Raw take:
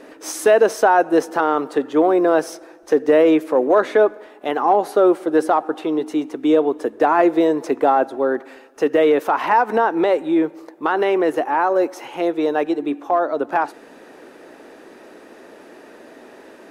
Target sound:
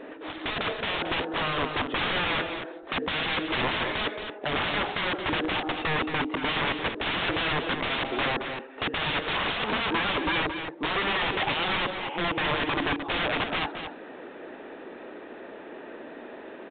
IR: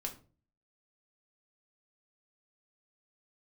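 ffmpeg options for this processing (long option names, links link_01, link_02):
-af "aeval=exprs='(mod(10.6*val(0)+1,2)-1)/10.6':channel_layout=same,aecho=1:1:223:0.398" -ar 8000 -c:a pcm_mulaw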